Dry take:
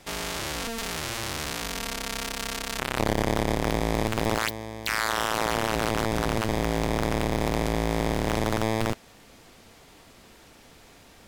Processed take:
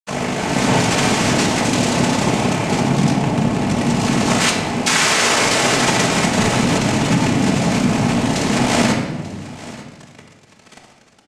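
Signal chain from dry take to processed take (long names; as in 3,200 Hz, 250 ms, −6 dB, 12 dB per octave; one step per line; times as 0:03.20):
0:02.68–0:03.12: low-shelf EQ 470 Hz +9 dB
automatic gain control gain up to 13 dB
fuzz pedal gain 35 dB, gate −31 dBFS
cochlear-implant simulation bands 4
single-tap delay 889 ms −18 dB
rectangular room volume 1,000 cubic metres, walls mixed, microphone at 1.5 metres
level +2 dB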